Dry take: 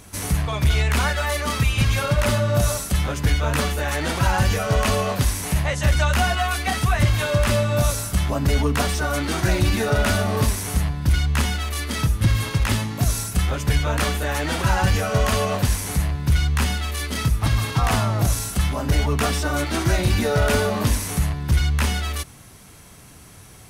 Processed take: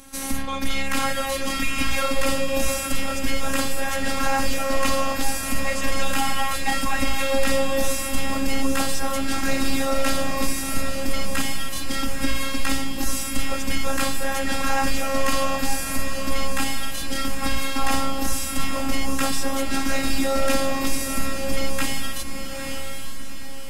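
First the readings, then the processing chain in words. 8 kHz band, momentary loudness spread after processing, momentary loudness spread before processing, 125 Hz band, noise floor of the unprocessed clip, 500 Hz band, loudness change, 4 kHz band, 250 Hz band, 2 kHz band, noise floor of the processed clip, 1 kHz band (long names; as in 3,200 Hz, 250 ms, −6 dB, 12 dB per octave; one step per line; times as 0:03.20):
+0.5 dB, 5 LU, 4 LU, −16.0 dB, −45 dBFS, −1.5 dB, −3.5 dB, 0.0 dB, −0.5 dB, −1.0 dB, −27 dBFS, −1.0 dB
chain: phases set to zero 270 Hz
feedback delay with all-pass diffusion 867 ms, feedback 46%, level −5 dB
level +1.5 dB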